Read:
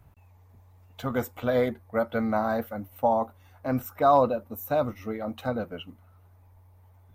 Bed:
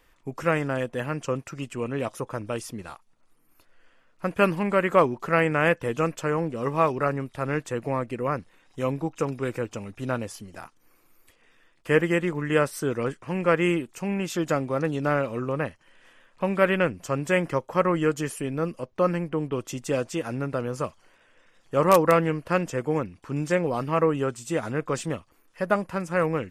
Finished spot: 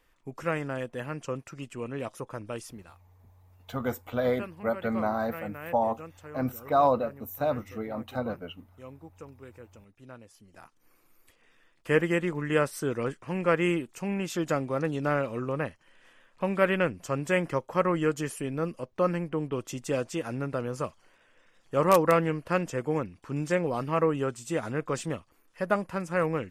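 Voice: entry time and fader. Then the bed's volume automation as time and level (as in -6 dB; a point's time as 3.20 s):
2.70 s, -2.5 dB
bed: 2.67 s -6 dB
3.10 s -19 dB
10.27 s -19 dB
10.86 s -3 dB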